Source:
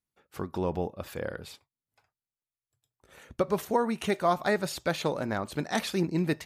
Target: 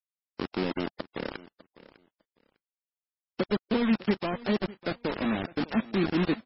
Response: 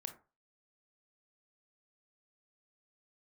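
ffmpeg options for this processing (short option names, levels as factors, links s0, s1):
-filter_complex "[0:a]highpass=f=54:p=1,lowshelf=f=150:t=q:w=3:g=-13,asettb=1/sr,asplit=3[s0][s1][s2];[s0]atrim=end=0.694[s3];[s1]atrim=start=0.69:end=1.18,asetpts=PTS-STARTPTS,afade=t=in:d=0.004:c=qsin,afade=t=out:st=0.486:d=0.004:c=qsin,aecho=1:1:3.3:0.5,atrim=end_sample=21609[s4];[s2]atrim=start=1.176[s5];[s3][s4]acrossfade=d=0.004:c1=hsin:c2=qsin[s6];[s6][s5]acrossfade=d=0.004:c1=qsin:c2=hsin,acrossover=split=430[s7][s8];[s8]acompressor=threshold=0.0141:ratio=5[s9];[s7][s9]amix=inputs=2:normalize=0,acrusher=bits=4:mix=0:aa=0.000001,aecho=1:1:602|1204:0.112|0.0202" -ar 16000 -c:a libmp3lame -b:a 16k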